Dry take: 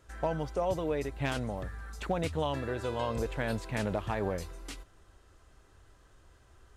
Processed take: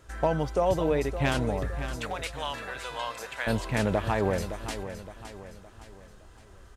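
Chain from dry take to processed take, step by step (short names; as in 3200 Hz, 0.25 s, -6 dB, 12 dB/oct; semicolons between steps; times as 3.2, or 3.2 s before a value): 1.95–3.47 HPF 1100 Hz 12 dB/oct; feedback echo 0.565 s, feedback 43%, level -11 dB; gain +6 dB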